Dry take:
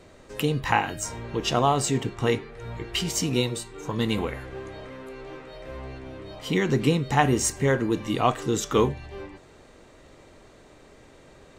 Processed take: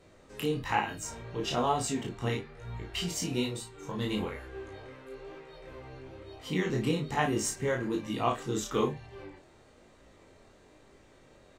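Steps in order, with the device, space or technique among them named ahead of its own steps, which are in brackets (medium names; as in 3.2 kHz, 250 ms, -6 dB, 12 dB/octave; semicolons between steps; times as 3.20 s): double-tracked vocal (doubling 33 ms -5 dB; chorus 1.1 Hz, delay 18 ms, depth 6.1 ms); trim -5 dB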